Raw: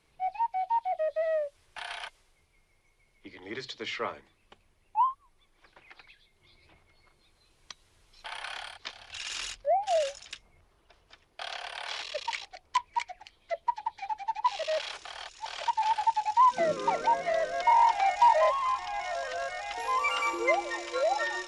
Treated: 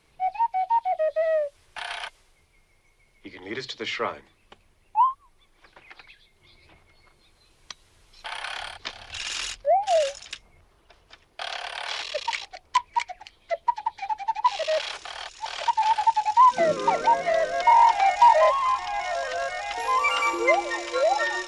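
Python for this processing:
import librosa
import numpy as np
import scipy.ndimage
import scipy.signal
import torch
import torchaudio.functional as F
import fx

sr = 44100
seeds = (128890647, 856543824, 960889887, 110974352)

y = fx.low_shelf(x, sr, hz=470.0, db=6.0, at=(8.6, 9.31))
y = F.gain(torch.from_numpy(y), 5.5).numpy()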